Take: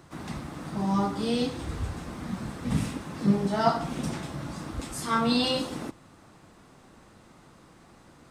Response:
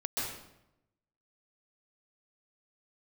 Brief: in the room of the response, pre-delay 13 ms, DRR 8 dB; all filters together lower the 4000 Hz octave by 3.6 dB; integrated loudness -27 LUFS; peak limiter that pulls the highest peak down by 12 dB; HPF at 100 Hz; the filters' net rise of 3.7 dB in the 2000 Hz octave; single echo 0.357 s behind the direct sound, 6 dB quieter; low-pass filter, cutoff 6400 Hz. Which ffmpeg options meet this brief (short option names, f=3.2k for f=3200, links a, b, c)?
-filter_complex "[0:a]highpass=100,lowpass=6.4k,equalizer=f=2k:t=o:g=7,equalizer=f=4k:t=o:g=-7,alimiter=limit=-19.5dB:level=0:latency=1,aecho=1:1:357:0.501,asplit=2[a][b];[1:a]atrim=start_sample=2205,adelay=13[c];[b][c]afir=irnorm=-1:irlink=0,volume=-13dB[d];[a][d]amix=inputs=2:normalize=0,volume=3dB"